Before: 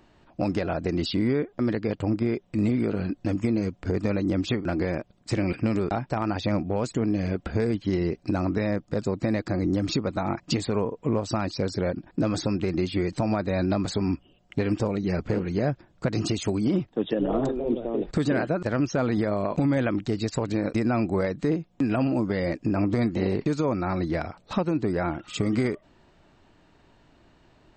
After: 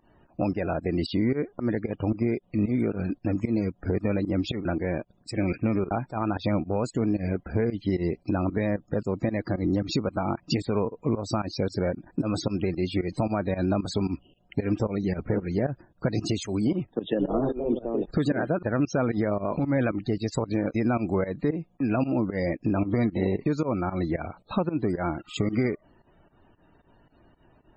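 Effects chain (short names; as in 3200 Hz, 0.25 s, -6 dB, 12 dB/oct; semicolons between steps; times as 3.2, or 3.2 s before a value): 19.35–19.93 transient shaper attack -5 dB, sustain +4 dB; pump 113 bpm, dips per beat 2, -19 dB, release 0.103 s; loudest bins only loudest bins 64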